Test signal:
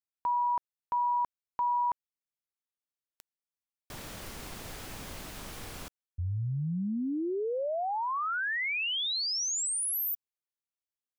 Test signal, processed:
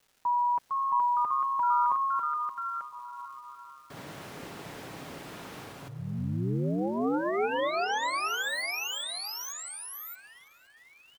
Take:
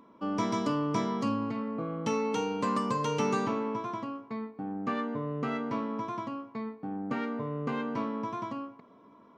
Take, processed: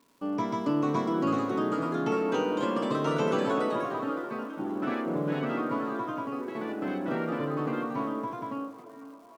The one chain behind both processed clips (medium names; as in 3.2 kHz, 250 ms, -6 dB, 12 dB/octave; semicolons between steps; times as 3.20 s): high-pass 120 Hz; treble shelf 3.5 kHz -11.5 dB; comb 7.2 ms, depth 39%; gate with hold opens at -43 dBFS, range -10 dB; crackle 600 per s -54 dBFS; repeats whose band climbs or falls 445 ms, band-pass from 350 Hz, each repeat 0.7 oct, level -11 dB; ever faster or slower copies 484 ms, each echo +2 st, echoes 3; tape echo 504 ms, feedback 45%, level -19 dB, low-pass 4.8 kHz